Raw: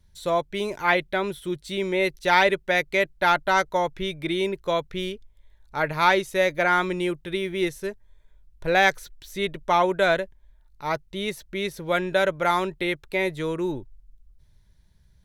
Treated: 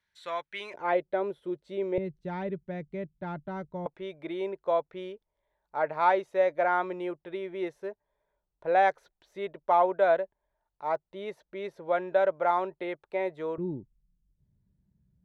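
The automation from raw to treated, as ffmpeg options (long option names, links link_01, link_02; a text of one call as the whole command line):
ffmpeg -i in.wav -af "asetnsamples=nb_out_samples=441:pad=0,asendcmd='0.74 bandpass f 530;1.98 bandpass f 160;3.86 bandpass f 690;13.58 bandpass f 190',bandpass=frequency=1800:width_type=q:width=1.6:csg=0" out.wav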